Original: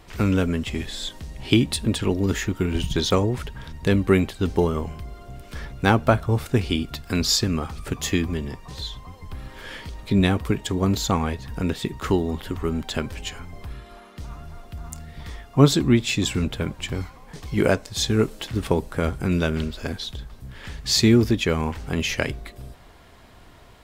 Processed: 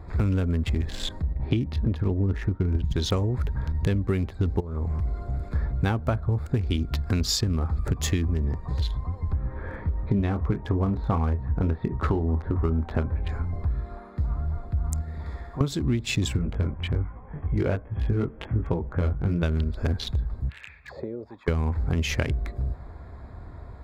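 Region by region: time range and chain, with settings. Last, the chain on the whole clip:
0:01.22–0:02.85: downward expander −33 dBFS + high-frequency loss of the air 270 metres
0:04.60–0:05.49: high-shelf EQ 3,800 Hz +8.5 dB + downward compressor 4 to 1, threshold −33 dBFS + highs frequency-modulated by the lows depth 0.26 ms
0:09.33–0:13.30: Bessel low-pass filter 2,100 Hz, order 4 + double-tracking delay 25 ms −8.5 dB + dynamic equaliser 910 Hz, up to +5 dB, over −38 dBFS, Q 0.72
0:15.01–0:15.61: bass and treble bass −10 dB, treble +3 dB + downward compressor 2.5 to 1, threshold −41 dBFS + flutter between parallel walls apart 10.9 metres, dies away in 0.9 s
0:16.37–0:19.43: chorus effect 1.3 Hz, delay 17.5 ms, depth 4.6 ms + linear-phase brick-wall low-pass 3,400 Hz
0:20.49–0:21.48: high-shelf EQ 2,700 Hz +12 dB + envelope filter 530–3,000 Hz, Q 12, down, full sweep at −11 dBFS + multiband upward and downward compressor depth 100%
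whole clip: adaptive Wiener filter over 15 samples; parametric band 70 Hz +12 dB 1.5 octaves; downward compressor 10 to 1, threshold −24 dBFS; level +3 dB

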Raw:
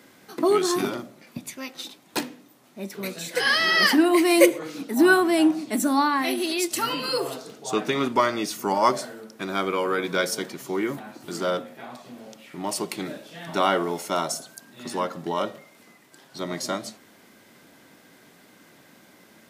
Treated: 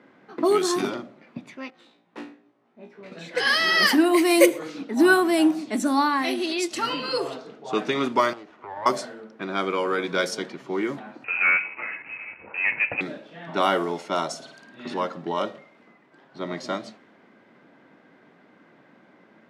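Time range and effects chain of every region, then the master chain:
0:01.70–0:03.12: phase distortion by the signal itself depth 0.32 ms + tuned comb filter 58 Hz, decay 0.33 s, mix 100%
0:08.33–0:08.86: downward compressor 4 to 1, threshold −30 dBFS + resonant band-pass 930 Hz, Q 1.1 + windowed peak hold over 9 samples
0:11.24–0:13.01: leveller curve on the samples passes 2 + voice inversion scrambler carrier 2,800 Hz
0:14.37–0:14.94: flutter between parallel walls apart 9.2 metres, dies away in 0.67 s + dynamic equaliser 3,200 Hz, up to +6 dB, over −53 dBFS, Q 0.92
whole clip: high-pass filter 140 Hz; low-pass that shuts in the quiet parts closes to 1,800 Hz, open at −17 dBFS

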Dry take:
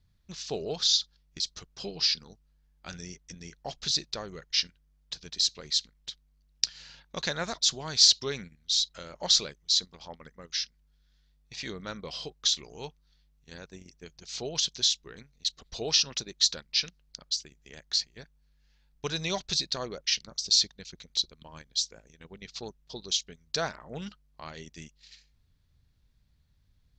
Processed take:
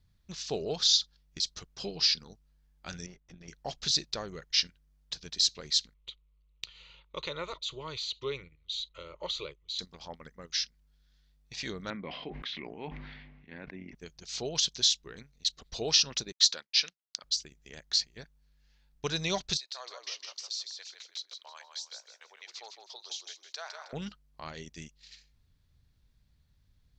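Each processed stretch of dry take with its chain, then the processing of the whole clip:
0:03.06–0:03.48: tube saturation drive 42 dB, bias 0.8 + high-frequency loss of the air 190 metres
0:05.94–0:09.79: low-pass filter 6,100 Hz 24 dB per octave + downward compressor 2.5 to 1, threshold −26 dBFS + phaser with its sweep stopped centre 1,100 Hz, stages 8
0:11.90–0:13.95: loudspeaker in its box 120–2,500 Hz, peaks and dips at 130 Hz −8 dB, 200 Hz +3 dB, 280 Hz +5 dB, 480 Hz −5 dB, 1,300 Hz −5 dB, 2,100 Hz +8 dB + level that may fall only so fast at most 34 dB per second
0:16.32–0:17.24: meter weighting curve A + downward expander −53 dBFS + one half of a high-frequency compander encoder only
0:19.57–0:23.93: high-pass filter 670 Hz 24 dB per octave + downward compressor 2.5 to 1, threshold −41 dBFS + echo with shifted repeats 158 ms, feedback 30%, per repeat −30 Hz, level −6 dB
whole clip: no processing

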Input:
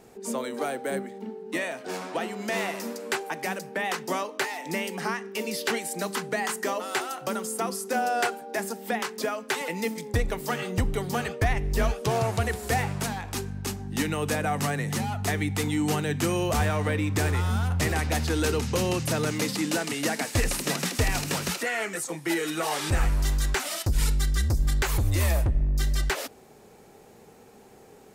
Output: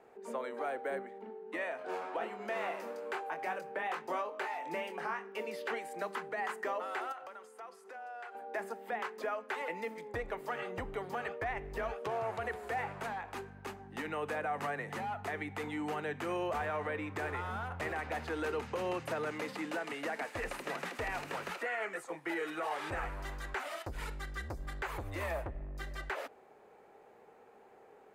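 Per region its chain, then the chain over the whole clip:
0:01.79–0:05.37: parametric band 1,900 Hz −4 dB 0.32 octaves + upward compression, threshold −35 dBFS + double-tracking delay 24 ms −6.5 dB
0:07.12–0:08.35: downward compressor 16 to 1, threshold −36 dBFS + meter weighting curve A
whole clip: three-way crossover with the lows and the highs turned down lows −16 dB, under 390 Hz, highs −19 dB, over 2,400 Hz; notch filter 5,500 Hz, Q 24; brickwall limiter −24 dBFS; level −3.5 dB

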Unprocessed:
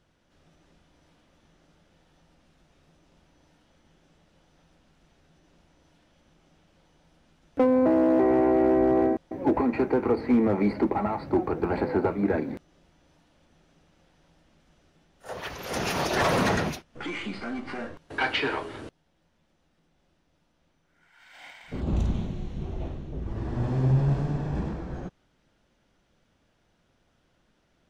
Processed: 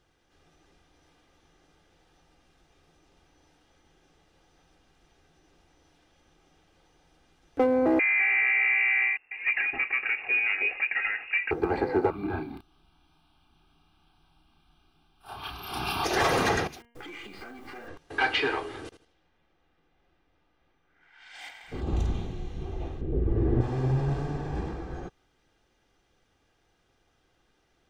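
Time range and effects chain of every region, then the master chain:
0:07.99–0:11.51: parametric band 280 Hz −9.5 dB 1 octave + notch filter 1,500 Hz, Q 18 + voice inversion scrambler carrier 2,700 Hz
0:12.10–0:16.04: phaser with its sweep stopped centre 1,900 Hz, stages 6 + double-tracking delay 32 ms −4 dB
0:16.67–0:17.88: hold until the input has moved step −53 dBFS + hum removal 235.7 Hz, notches 13 + downward compressor 12 to 1, threshold −38 dBFS
0:18.84–0:21.49: high-shelf EQ 2,400 Hz +7.5 dB + low-pass that shuts in the quiet parts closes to 2,000 Hz, open at −42 dBFS + repeating echo 79 ms, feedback 26%, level −12 dB
0:23.01–0:23.61: low-pass filter 2,500 Hz + low shelf with overshoot 630 Hz +8.5 dB, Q 1.5
whole clip: low-shelf EQ 420 Hz −3.5 dB; comb filter 2.5 ms, depth 45%

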